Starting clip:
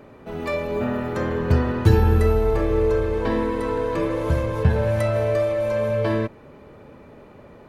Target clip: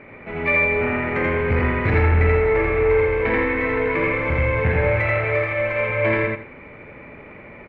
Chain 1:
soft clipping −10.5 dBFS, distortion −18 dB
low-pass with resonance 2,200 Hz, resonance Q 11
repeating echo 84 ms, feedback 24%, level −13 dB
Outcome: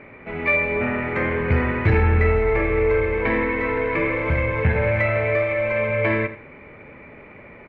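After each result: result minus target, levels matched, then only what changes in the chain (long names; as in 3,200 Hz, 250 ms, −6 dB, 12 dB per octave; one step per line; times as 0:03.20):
echo-to-direct −12 dB; soft clipping: distortion −6 dB
change: repeating echo 84 ms, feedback 24%, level −1 dB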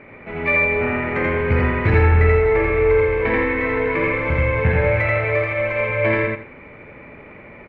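soft clipping: distortion −6 dB
change: soft clipping −16.5 dBFS, distortion −12 dB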